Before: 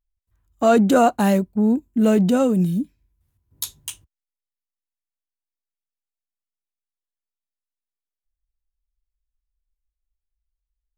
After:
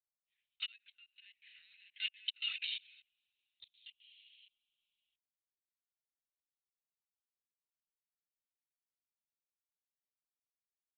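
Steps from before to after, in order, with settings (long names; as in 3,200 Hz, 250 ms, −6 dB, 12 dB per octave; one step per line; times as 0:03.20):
noise gate −54 dBFS, range −12 dB
Butterworth high-pass 2,200 Hz 48 dB per octave
coupled-rooms reverb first 0.47 s, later 1.6 s, from −17 dB, DRR 11.5 dB
in parallel at −1 dB: downward compressor 10 to 1, threshold −46 dBFS, peak gain reduction 23.5 dB
on the sum: floating-point word with a short mantissa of 8 bits
gate with flip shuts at −24 dBFS, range −38 dB
output level in coarse steps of 24 dB
linear-prediction vocoder at 8 kHz pitch kept
level +16 dB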